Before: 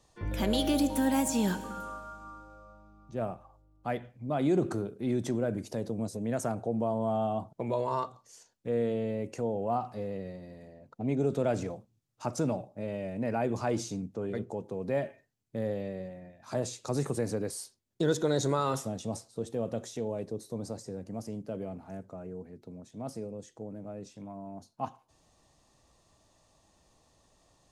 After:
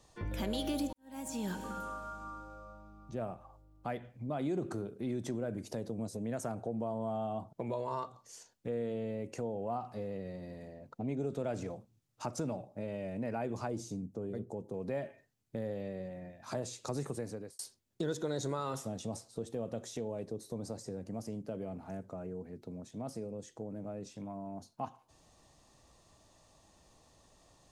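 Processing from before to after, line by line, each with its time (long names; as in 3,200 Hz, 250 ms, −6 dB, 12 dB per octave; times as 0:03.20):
0:00.93–0:01.60: fade in quadratic
0:13.67–0:14.74: parametric band 2,200 Hz −11 dB 2.6 octaves
0:17.05–0:17.59: fade out
whole clip: downward compressor 2 to 1, threshold −42 dBFS; level +2 dB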